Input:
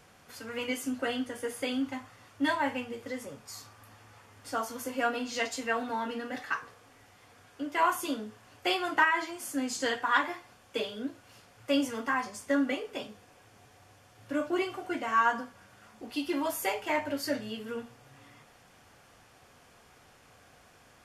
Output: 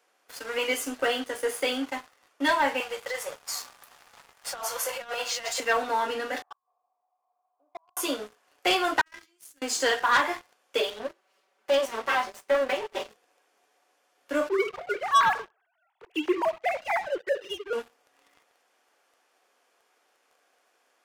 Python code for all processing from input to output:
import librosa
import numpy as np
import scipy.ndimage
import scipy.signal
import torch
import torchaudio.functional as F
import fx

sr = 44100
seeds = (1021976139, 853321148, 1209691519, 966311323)

y = fx.chain(x, sr, fx.highpass(hz=530.0, slope=24),
    fx.over_compress(threshold_db=-40.0, ratio=-1.0), at=(2.8, 5.6))
y = fx.chain(y, sr, fx.formant_cascade(vowel='a'),
    fx.gate_flip(shuts_db=-36.0, range_db=-25), at=(6.42, 7.97))
y = fx.chain(y, sr, fx.tone_stack(knobs='6-0-2'),
    fx.comb(ms=5.6, depth=0.45),
    fx.over_compress(threshold_db=-50.0, ratio=-0.5), at=(9.01, 9.62))
y = fx.chain(y, sr, fx.lower_of_two(delay_ms=5.2),
    fx.high_shelf(hz=4300.0, db=-8.5), at=(10.9, 13.1))
y = fx.chain(y, sr, fx.sine_speech(),
    fx.echo_feedback(ms=72, feedback_pct=42, wet_db=-21.0), at=(14.49, 17.73))
y = scipy.signal.sosfilt(scipy.signal.butter(4, 340.0, 'highpass', fs=sr, output='sos'), y)
y = fx.leveller(y, sr, passes=3)
y = y * 10.0 ** (-3.5 / 20.0)